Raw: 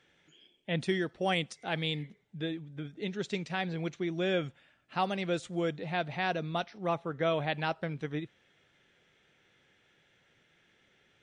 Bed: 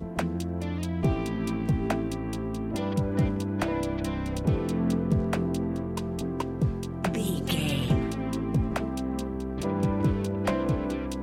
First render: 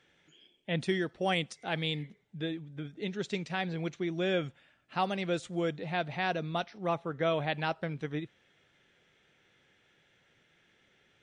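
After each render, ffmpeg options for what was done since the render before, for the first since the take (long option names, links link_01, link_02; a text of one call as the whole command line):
ffmpeg -i in.wav -af anull out.wav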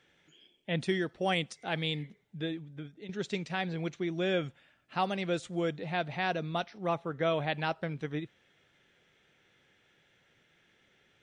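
ffmpeg -i in.wav -filter_complex "[0:a]asplit=2[link_01][link_02];[link_01]atrim=end=3.09,asetpts=PTS-STARTPTS,afade=type=out:start_time=2.48:duration=0.61:curve=qsin:silence=0.223872[link_03];[link_02]atrim=start=3.09,asetpts=PTS-STARTPTS,afade=type=in:duration=0.004:curve=hsin:silence=0.223872[link_04];[link_03][link_04]concat=n=2:v=0:a=1" out.wav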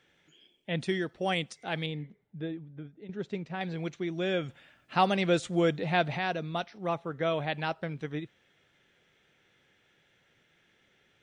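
ffmpeg -i in.wav -filter_complex "[0:a]asettb=1/sr,asplit=3[link_01][link_02][link_03];[link_01]atrim=end=1.864[link_04];[link_02]atrim=start=1.86:end=3.61,asetpts=PTS-STARTPTS,afade=type=in:duration=0.004:curve=qsin,afade=type=out:start_time=1.746:duration=0.004:curve=qsin,lowpass=frequency=1100:poles=1[link_05];[link_03]atrim=start=3.606[link_06];[link_04][link_05]acrossfade=duration=0.004:curve1=hsin:curve2=qsin[link_07];[link_07][link_06]acrossfade=duration=0.004:curve1=qsin:curve2=hsin,asplit=3[link_08][link_09][link_10];[link_08]afade=type=out:start_time=4.48:duration=0.02[link_11];[link_09]acontrast=53,afade=type=in:start_time=4.48:duration=0.02,afade=type=out:start_time=6.17:duration=0.02[link_12];[link_10]afade=type=in:start_time=6.17:duration=0.02[link_13];[link_11][link_12][link_13]amix=inputs=3:normalize=0" out.wav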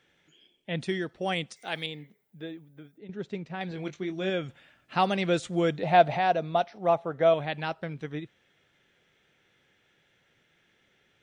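ffmpeg -i in.wav -filter_complex "[0:a]asettb=1/sr,asplit=3[link_01][link_02][link_03];[link_01]atrim=end=1.564[link_04];[link_02]atrim=start=1.56:end=2.98,asetpts=PTS-STARTPTS,afade=type=in:duration=0.004:curve=qsin,afade=type=out:start_time=1.416:duration=0.004:curve=qsin,aemphasis=mode=production:type=bsi[link_05];[link_03]atrim=start=2.976[link_06];[link_04][link_05]acrossfade=duration=0.004:curve1=hsin:curve2=qsin[link_07];[link_07][link_06]acrossfade=duration=0.004:curve1=qsin:curve2=hsin,asettb=1/sr,asplit=3[link_08][link_09][link_10];[link_08]atrim=end=3.694[link_11];[link_09]atrim=start=3.69:end=4.3,asetpts=PTS-STARTPTS,afade=type=in:duration=0.004:curve=qsin,afade=type=out:start_time=0.606:duration=0.004:curve=qsin,asplit=2[link_12][link_13];[link_13]adelay=21,volume=-8dB[link_14];[link_12][link_14]amix=inputs=2:normalize=0,atrim=end_sample=26901[link_15];[link_10]atrim=start=4.296[link_16];[link_11][link_15]acrossfade=duration=0.004:curve1=hsin:curve2=qsin[link_17];[link_17][link_16]acrossfade=duration=0.004:curve1=qsin:curve2=hsin,asettb=1/sr,asplit=3[link_18][link_19][link_20];[link_18]atrim=end=5.834[link_21];[link_19]atrim=start=5.83:end=7.34,asetpts=PTS-STARTPTS,afade=type=in:duration=0.004:curve=qsin,afade=type=out:start_time=1.506:duration=0.004:curve=qsin,equalizer=frequency=680:width=1.6:gain=10.5[link_22];[link_20]atrim=start=7.336[link_23];[link_21][link_22]acrossfade=duration=0.004:curve1=hsin:curve2=qsin[link_24];[link_24][link_23]acrossfade=duration=0.004:curve1=qsin:curve2=hsin" out.wav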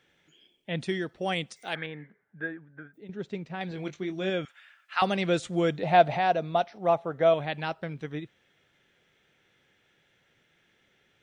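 ffmpeg -i in.wav -filter_complex "[0:a]asettb=1/sr,asplit=3[link_01][link_02][link_03];[link_01]atrim=end=1.754[link_04];[link_02]atrim=start=1.75:end=2.94,asetpts=PTS-STARTPTS,afade=type=in:duration=0.004:curve=qsin,afade=type=out:start_time=1.186:duration=0.004:curve=qsin,lowpass=frequency=1600:width_type=q:width=8[link_05];[link_03]atrim=start=2.936[link_06];[link_04][link_05]acrossfade=duration=0.004:curve1=hsin:curve2=qsin[link_07];[link_07][link_06]acrossfade=duration=0.004:curve1=qsin:curve2=hsin,asettb=1/sr,asplit=3[link_08][link_09][link_10];[link_08]atrim=end=4.454[link_11];[link_09]atrim=start=4.45:end=5.02,asetpts=PTS-STARTPTS,afade=type=in:duration=0.004:curve=qsin,afade=type=out:start_time=0.566:duration=0.004:curve=qsin,highpass=frequency=1400:width_type=q:width=1.7[link_12];[link_10]atrim=start=5.016[link_13];[link_11][link_12]acrossfade=duration=0.004:curve1=hsin:curve2=qsin[link_14];[link_14][link_13]acrossfade=duration=0.004:curve1=qsin:curve2=hsin" out.wav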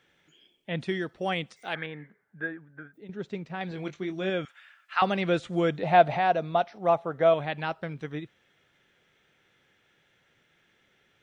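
ffmpeg -i in.wav -filter_complex "[0:a]acrossover=split=4100[link_01][link_02];[link_02]acompressor=threshold=-54dB:ratio=4:attack=1:release=60[link_03];[link_01][link_03]amix=inputs=2:normalize=0,equalizer=frequency=1200:width=1.5:gain=2.5" out.wav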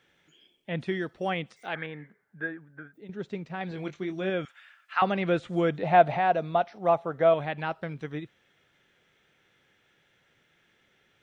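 ffmpeg -i in.wav -filter_complex "[0:a]acrossover=split=3200[link_01][link_02];[link_02]acompressor=threshold=-53dB:ratio=4:attack=1:release=60[link_03];[link_01][link_03]amix=inputs=2:normalize=0" out.wav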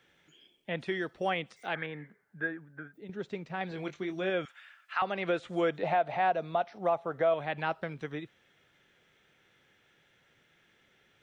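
ffmpeg -i in.wav -filter_complex "[0:a]acrossover=split=340[link_01][link_02];[link_01]acompressor=threshold=-41dB:ratio=6[link_03];[link_03][link_02]amix=inputs=2:normalize=0,alimiter=limit=-18.5dB:level=0:latency=1:release=281" out.wav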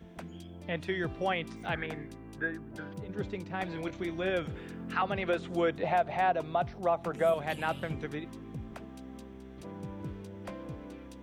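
ffmpeg -i in.wav -i bed.wav -filter_complex "[1:a]volume=-15.5dB[link_01];[0:a][link_01]amix=inputs=2:normalize=0" out.wav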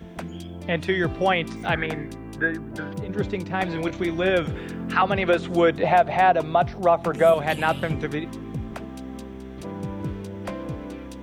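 ffmpeg -i in.wav -af "volume=10dB" out.wav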